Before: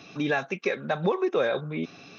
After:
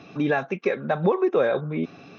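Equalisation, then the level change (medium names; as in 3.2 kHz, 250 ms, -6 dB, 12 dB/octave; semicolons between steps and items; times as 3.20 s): treble shelf 2.6 kHz -11.5 dB; treble shelf 5.3 kHz -4 dB; +4.5 dB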